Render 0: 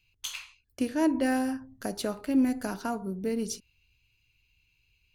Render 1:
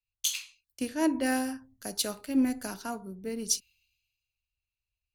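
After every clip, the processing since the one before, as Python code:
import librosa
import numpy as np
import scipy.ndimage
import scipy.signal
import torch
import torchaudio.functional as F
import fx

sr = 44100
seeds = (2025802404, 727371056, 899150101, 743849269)

y = fx.high_shelf(x, sr, hz=2400.0, db=10.0)
y = fx.band_widen(y, sr, depth_pct=70)
y = y * librosa.db_to_amplitude(-4.5)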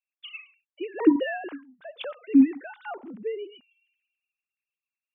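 y = fx.sine_speech(x, sr)
y = y * librosa.db_to_amplitude(5.0)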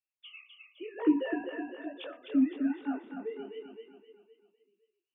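y = fx.echo_feedback(x, sr, ms=257, feedback_pct=47, wet_db=-5.0)
y = fx.detune_double(y, sr, cents=37)
y = y * librosa.db_to_amplitude(-4.0)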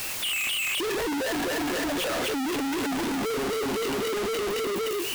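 y = np.sign(x) * np.sqrt(np.mean(np.square(x)))
y = y * librosa.db_to_amplitude(7.0)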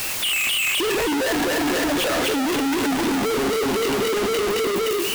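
y = x + 10.0 ** (-11.5 / 20.0) * np.pad(x, (int(319 * sr / 1000.0), 0))[:len(x)]
y = y * librosa.db_to_amplitude(6.0)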